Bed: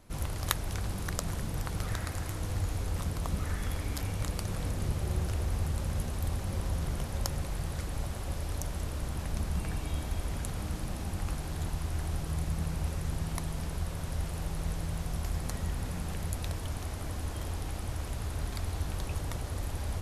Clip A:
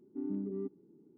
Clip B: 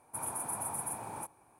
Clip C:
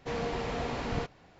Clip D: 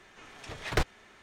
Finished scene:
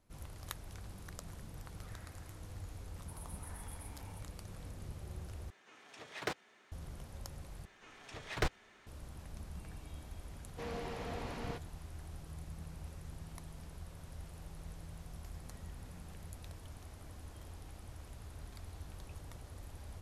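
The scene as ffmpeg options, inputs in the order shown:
-filter_complex "[4:a]asplit=2[s0][s1];[0:a]volume=0.188[s2];[s0]highpass=200[s3];[s2]asplit=3[s4][s5][s6];[s4]atrim=end=5.504[s7];[s3]atrim=end=1.22,asetpts=PTS-STARTPTS,volume=0.376[s8];[s5]atrim=start=6.716:end=7.654[s9];[s1]atrim=end=1.22,asetpts=PTS-STARTPTS,volume=0.501[s10];[s6]atrim=start=8.866[s11];[2:a]atrim=end=1.59,asetpts=PTS-STARTPTS,volume=0.141,afade=t=in:d=0.004:c=hsin,afade=t=out:st=1.586:d=0.004:c=hsin,adelay=2940[s12];[3:a]atrim=end=1.39,asetpts=PTS-STARTPTS,volume=0.355,afade=t=in:d=0.004:c=hsin,afade=t=out:st=1.386:d=0.004:c=hsin,adelay=10520[s13];[s7][s8]acrossfade=d=0.004:c1=hsin:c2=hsin[s14];[s14][s9]acrossfade=d=0.004:c1=hsin:c2=hsin[s15];[s15][s10]acrossfade=d=0.004:c1=hsin:c2=hsin[s16];[s16][s11]acrossfade=d=0.004:c1=hsin:c2=hsin[s17];[s17][s12][s13]amix=inputs=3:normalize=0"

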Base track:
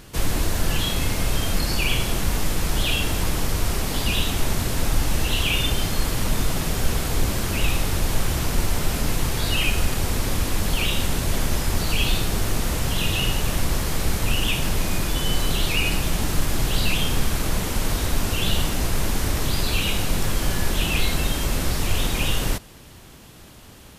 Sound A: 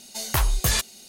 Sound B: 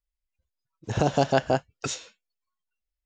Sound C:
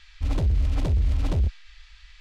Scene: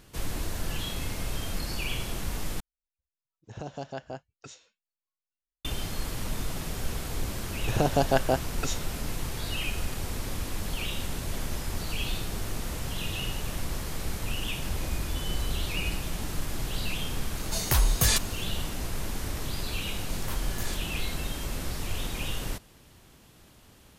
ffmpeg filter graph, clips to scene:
-filter_complex "[2:a]asplit=2[s0][s1];[1:a]asplit=2[s2][s3];[0:a]volume=0.316[s4];[s0]lowshelf=f=76:g=5.5[s5];[3:a]asplit=2[s6][s7];[s7]adelay=3.8,afreqshift=-2.1[s8];[s6][s8]amix=inputs=2:normalize=1[s9];[s2]acrossover=split=420|3000[s10][s11][s12];[s11]acompressor=threshold=0.0398:ratio=6:attack=3.2:release=140:knee=2.83:detection=peak[s13];[s10][s13][s12]amix=inputs=3:normalize=0[s14];[s3]flanger=delay=16:depth=6.4:speed=2.8[s15];[s4]asplit=2[s16][s17];[s16]atrim=end=2.604[s18];[s5]atrim=end=3.05,asetpts=PTS-STARTPTS,volume=0.158[s19];[s17]atrim=start=5.646[s20];[s1]atrim=end=3.05,asetpts=PTS-STARTPTS,volume=0.794,afade=t=in:d=0.004:c=hsin,afade=t=out:st=3.046:d=0.004:c=hsin,adelay=6790[s21];[s9]atrim=end=2.2,asetpts=PTS-STARTPTS,volume=0.355,afade=t=in:d=0.004:c=hsin,afade=t=out:st=2.196:d=0.004:c=hsin,adelay=14450[s22];[s14]atrim=end=1.08,asetpts=PTS-STARTPTS,volume=0.944,afade=t=in:d=0.004:c=hsin,afade=t=out:st=1.076:d=0.004:c=hsin,adelay=17370[s23];[s15]atrim=end=1.08,asetpts=PTS-STARTPTS,volume=0.237,afade=t=in:d=0.004:c=hsin,afade=t=out:st=1.076:d=0.004:c=hsin,adelay=19940[s24];[s18][s19]acrossfade=d=0.004:c1=hsin:c2=hsin[s25];[s25][s20]acrossfade=d=0.004:c1=hsin:c2=hsin[s26];[s26][s21][s22][s23][s24]amix=inputs=5:normalize=0"

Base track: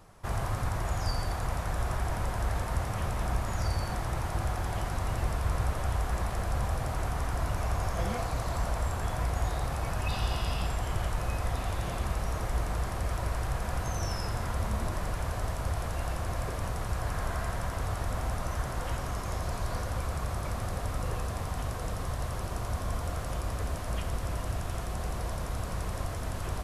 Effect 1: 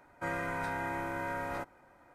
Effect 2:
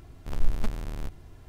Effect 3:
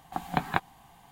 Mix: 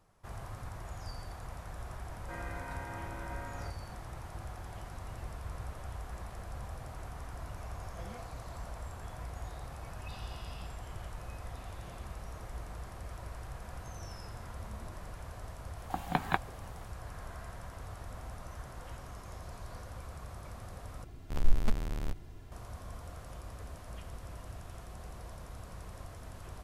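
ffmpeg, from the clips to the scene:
-filter_complex "[0:a]volume=0.237,asplit=2[s0][s1];[s0]atrim=end=21.044[s2];[2:a]atrim=end=1.48,asetpts=PTS-STARTPTS,volume=0.891[s3];[s1]atrim=start=22.516[s4];[1:a]atrim=end=2.14,asetpts=PTS-STARTPTS,volume=0.355,afade=t=in:d=0.004:c=hsin,afade=t=out:st=2.136:d=0.004:c=hsin,adelay=2070[s5];[3:a]atrim=end=1.11,asetpts=PTS-STARTPTS,volume=0.708,afade=t=in:d=0.004:c=hsin,afade=t=out:st=1.106:d=0.004:c=hsin,adelay=15780[s6];[s2][s3]acrossfade=d=0.004:c1=hsin:c2=hsin[s7];[s7][s4]acrossfade=d=0.004:c1=hsin:c2=hsin[s8];[s8][s5][s6]amix=inputs=3:normalize=0"

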